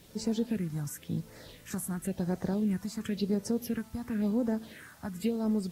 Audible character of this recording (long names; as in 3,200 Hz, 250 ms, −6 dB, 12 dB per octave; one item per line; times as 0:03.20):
phaser sweep stages 4, 0.95 Hz, lowest notch 440–3,100 Hz
a quantiser's noise floor 10 bits, dither triangular
AAC